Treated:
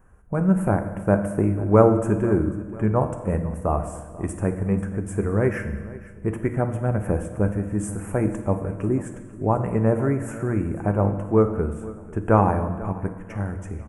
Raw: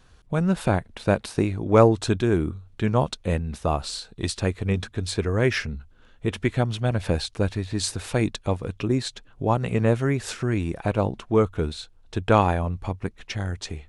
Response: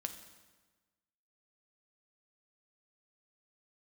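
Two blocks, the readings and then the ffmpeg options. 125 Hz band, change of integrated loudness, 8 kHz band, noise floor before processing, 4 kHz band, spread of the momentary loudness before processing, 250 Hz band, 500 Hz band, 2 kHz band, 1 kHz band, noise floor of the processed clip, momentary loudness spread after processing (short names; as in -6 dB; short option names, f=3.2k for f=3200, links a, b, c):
+1.5 dB, +1.5 dB, -6.5 dB, -54 dBFS, under -25 dB, 11 LU, +2.5 dB, +1.5 dB, -4.0 dB, +0.5 dB, -40 dBFS, 12 LU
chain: -filter_complex "[0:a]asuperstop=centerf=4100:order=4:qfactor=0.51,aecho=1:1:493|986|1479|1972:0.112|0.0505|0.0227|0.0102[a];[1:a]atrim=start_sample=2205[b];[a][b]afir=irnorm=-1:irlink=0,volume=2.5dB"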